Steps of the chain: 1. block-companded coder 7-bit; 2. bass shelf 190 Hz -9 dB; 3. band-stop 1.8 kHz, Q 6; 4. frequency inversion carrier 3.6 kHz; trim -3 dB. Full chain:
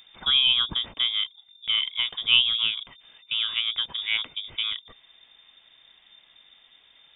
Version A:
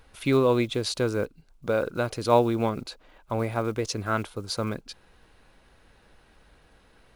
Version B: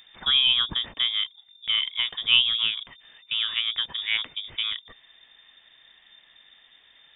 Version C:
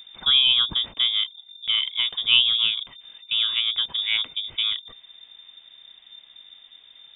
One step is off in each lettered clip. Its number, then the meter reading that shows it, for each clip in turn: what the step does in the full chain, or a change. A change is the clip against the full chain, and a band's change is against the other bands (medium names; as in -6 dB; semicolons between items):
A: 4, momentary loudness spread change +2 LU; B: 3, momentary loudness spread change +1 LU; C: 2, crest factor change -2.0 dB